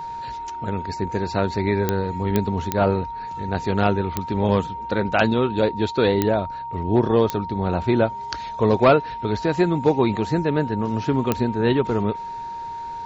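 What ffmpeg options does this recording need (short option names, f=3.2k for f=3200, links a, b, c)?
-af "adeclick=t=4,bandreject=f=930:w=30"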